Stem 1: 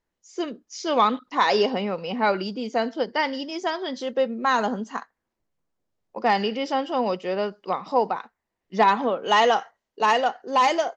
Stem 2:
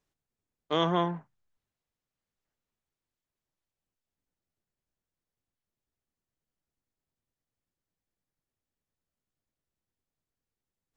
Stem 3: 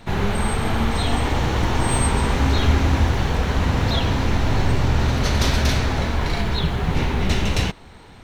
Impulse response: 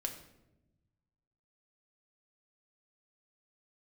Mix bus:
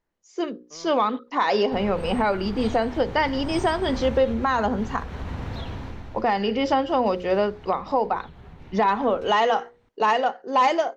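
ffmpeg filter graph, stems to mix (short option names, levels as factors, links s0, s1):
-filter_complex "[0:a]bandreject=f=60:t=h:w=6,bandreject=f=120:t=h:w=6,bandreject=f=180:t=h:w=6,bandreject=f=240:t=h:w=6,bandreject=f=300:t=h:w=6,bandreject=f=360:t=h:w=6,bandreject=f=420:t=h:w=6,bandreject=f=480:t=h:w=6,bandreject=f=540:t=h:w=6,volume=1.33,asplit=2[s0][s1];[1:a]asoftclip=type=hard:threshold=0.0447,volume=0.224[s2];[2:a]acompressor=threshold=0.0794:ratio=5,adelay=1650,volume=0.282,afade=t=out:st=5.56:d=0.71:silence=0.251189[s3];[s1]apad=whole_len=483397[s4];[s2][s4]sidechaincompress=threshold=0.0398:ratio=8:attack=16:release=740[s5];[s0][s5][s3]amix=inputs=3:normalize=0,highshelf=f=3400:g=-8.5,dynaudnorm=f=580:g=5:m=3.76,alimiter=limit=0.266:level=0:latency=1:release=381"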